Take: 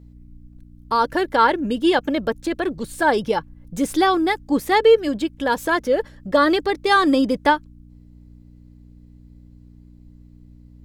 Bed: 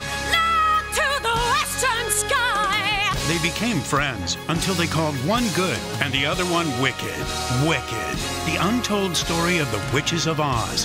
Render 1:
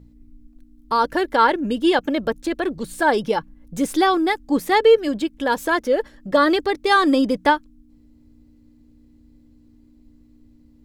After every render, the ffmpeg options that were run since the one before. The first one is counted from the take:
-af "bandreject=f=60:t=h:w=4,bandreject=f=120:t=h:w=4,bandreject=f=180:t=h:w=4"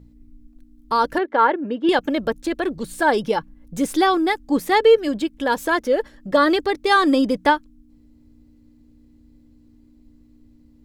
-filter_complex "[0:a]asettb=1/sr,asplit=3[s0][s1][s2];[s0]atrim=end=1.184[s3];[s1]atrim=start=1.18:end=1.89,asetpts=PTS-STARTPTS,afade=t=in:d=0.004:c=qsin,afade=t=out:st=0.706:d=0.004:c=qsin,highpass=260,lowpass=2000[s4];[s2]atrim=start=1.886[s5];[s3][s4]acrossfade=d=0.004:c1=hsin:c2=qsin[s6];[s6][s5]acrossfade=d=0.004:c1=qsin:c2=hsin"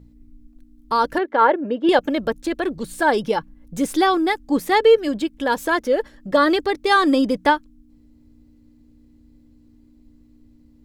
-filter_complex "[0:a]asettb=1/sr,asplit=3[s0][s1][s2];[s0]atrim=end=1.414[s3];[s1]atrim=start=1.41:end=2.08,asetpts=PTS-STARTPTS,afade=t=in:d=0.004:c=qsin,afade=t=out:st=0.666:d=0.004:c=qsin,equalizer=f=580:t=o:w=0.63:g=6.5[s4];[s2]atrim=start=2.076[s5];[s3][s4]acrossfade=d=0.004:c1=hsin:c2=qsin[s6];[s6][s5]acrossfade=d=0.004:c1=qsin:c2=hsin"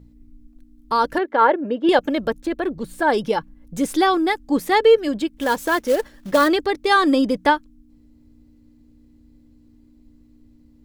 -filter_complex "[0:a]asettb=1/sr,asplit=3[s0][s1][s2];[s0]atrim=end=2.404[s3];[s1]atrim=start=2.4:end=3.1,asetpts=PTS-STARTPTS,afade=t=in:d=0.004:c=qsin,afade=t=out:st=0.696:d=0.004:c=qsin,equalizer=f=7100:t=o:w=2.8:g=-7[s4];[s2]atrim=start=3.096[s5];[s3][s4]acrossfade=d=0.004:c1=hsin:c2=qsin[s6];[s6][s5]acrossfade=d=0.004:c1=qsin:c2=hsin,asplit=3[s7][s8][s9];[s7]afade=t=out:st=5.37:d=0.02[s10];[s8]acrusher=bits=4:mode=log:mix=0:aa=0.000001,afade=t=in:st=5.37:d=0.02,afade=t=out:st=6.47:d=0.02[s11];[s9]afade=t=in:st=6.47:d=0.02[s12];[s10][s11][s12]amix=inputs=3:normalize=0"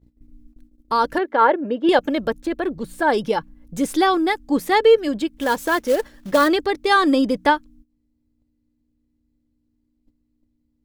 -af "agate=range=0.141:threshold=0.00501:ratio=16:detection=peak"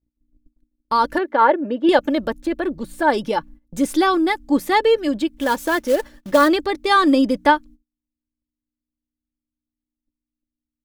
-af "agate=range=0.1:threshold=0.01:ratio=16:detection=peak,aecho=1:1:3.4:0.32"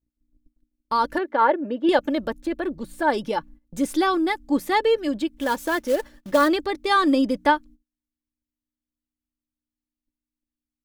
-af "volume=0.631"

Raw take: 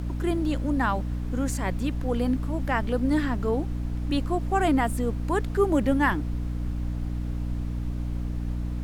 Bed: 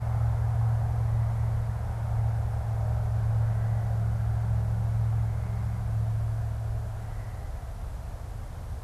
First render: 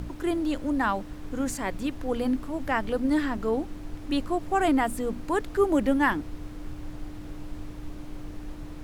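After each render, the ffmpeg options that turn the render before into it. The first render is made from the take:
-af "bandreject=f=60:t=h:w=6,bandreject=f=120:t=h:w=6,bandreject=f=180:t=h:w=6,bandreject=f=240:t=h:w=6"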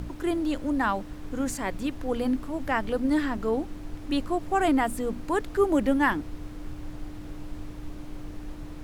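-af anull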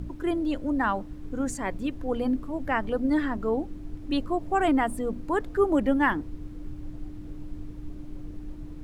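-af "afftdn=nr=10:nf=-40"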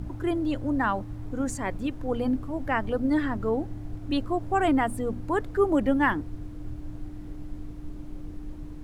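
-filter_complex "[1:a]volume=0.188[s0];[0:a][s0]amix=inputs=2:normalize=0"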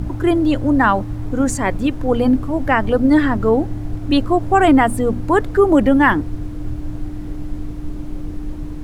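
-af "volume=3.76,alimiter=limit=0.708:level=0:latency=1"

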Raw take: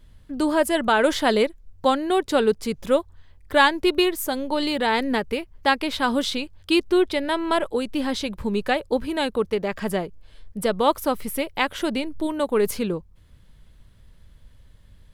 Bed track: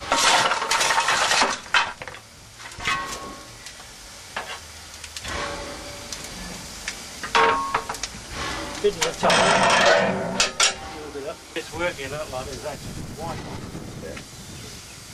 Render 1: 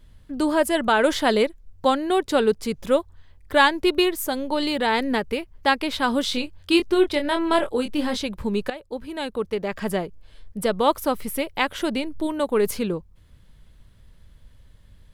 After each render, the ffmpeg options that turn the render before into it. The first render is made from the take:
-filter_complex "[0:a]asettb=1/sr,asplit=3[s0][s1][s2];[s0]atrim=end=6.274[s3];[s1]atrim=start=6.27:end=8.17,asetpts=PTS-STARTPTS,afade=t=in:d=0.004:c=qsin,afade=t=out:st=1.896:d=0.004:c=qsin,asplit=2[s4][s5];[s5]adelay=24,volume=0.473[s6];[s4][s6]amix=inputs=2:normalize=0,atrim=end_sample=83790[s7];[s2]atrim=start=8.166[s8];[s3][s7]acrossfade=d=0.004:c1=hsin:c2=qsin[s9];[s9][s8]acrossfade=d=0.004:c1=qsin:c2=hsin,asplit=2[s10][s11];[s10]atrim=end=8.7,asetpts=PTS-STARTPTS,afade=t=out:st=8.696:d=0.004:c=hsin:silence=0.188365[s12];[s11]atrim=start=8.7,asetpts=PTS-STARTPTS,afade=t=in:d=1.17:silence=0.188365[s13];[s12][s13]concat=n=2:v=0:a=1"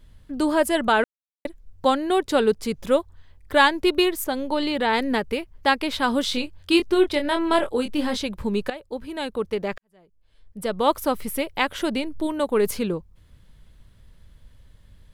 -filter_complex "[0:a]asettb=1/sr,asplit=3[s0][s1][s2];[s0]atrim=end=4.244[s3];[s1]atrim=start=4.24:end=4.93,asetpts=PTS-STARTPTS,afade=t=in:d=0.004:c=qsin,afade=t=out:st=0.686:d=0.004:c=qsin,acrossover=split=4200[s4][s5];[s5]acompressor=threshold=0.00708:ratio=4:attack=1:release=60[s6];[s4][s6]amix=inputs=2:normalize=0[s7];[s2]atrim=start=4.926[s8];[s3][s7]acrossfade=d=0.004:c1=hsin:c2=qsin[s9];[s9][s8]acrossfade=d=0.004:c1=qsin:c2=hsin,asplit=4[s10][s11][s12][s13];[s10]atrim=end=1.04,asetpts=PTS-STARTPTS,afade=t=out:st=1.036:d=0.004:c=hsin[s14];[s11]atrim=start=1.04:end=1.45,asetpts=PTS-STARTPTS,volume=0[s15];[s12]atrim=start=1.45:end=9.78,asetpts=PTS-STARTPTS,afade=t=in:d=0.004:c=hsin,afade=t=out:st=8.326:d=0.004:c=hsin[s16];[s13]atrim=start=9.78,asetpts=PTS-STARTPTS,afade=t=in:d=1.13:c=qua[s17];[s14][s15][s16][s17]concat=n=4:v=0:a=1"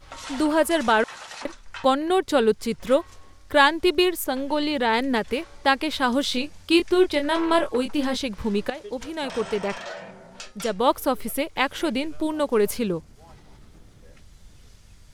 -filter_complex "[1:a]volume=0.106[s0];[0:a][s0]amix=inputs=2:normalize=0"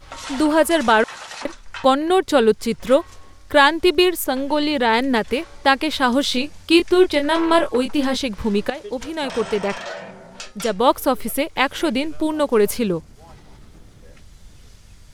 -af "volume=1.68,alimiter=limit=0.891:level=0:latency=1"

